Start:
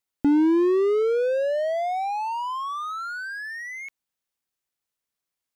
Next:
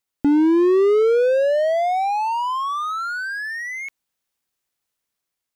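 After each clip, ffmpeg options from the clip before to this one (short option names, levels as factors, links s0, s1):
-af "dynaudnorm=f=270:g=5:m=1.5,volume=1.33"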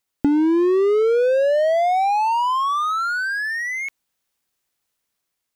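-af "acompressor=threshold=0.126:ratio=6,volume=1.5"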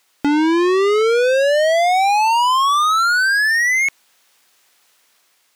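-filter_complex "[0:a]asplit=2[s0][s1];[s1]highpass=f=720:p=1,volume=39.8,asoftclip=type=tanh:threshold=0.501[s2];[s0][s2]amix=inputs=2:normalize=0,lowpass=f=6000:p=1,volume=0.501,volume=0.668"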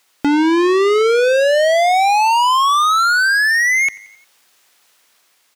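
-af "aecho=1:1:89|178|267|356:0.0794|0.0469|0.0277|0.0163,volume=1.19"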